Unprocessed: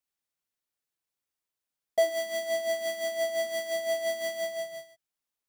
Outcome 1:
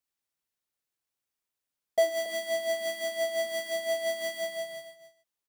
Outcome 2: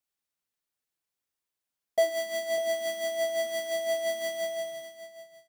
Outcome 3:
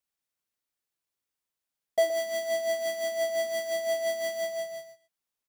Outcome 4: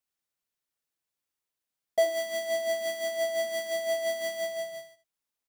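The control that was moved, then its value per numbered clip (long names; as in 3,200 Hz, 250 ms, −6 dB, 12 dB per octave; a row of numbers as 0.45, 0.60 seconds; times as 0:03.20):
single-tap delay, delay time: 277, 598, 120, 77 milliseconds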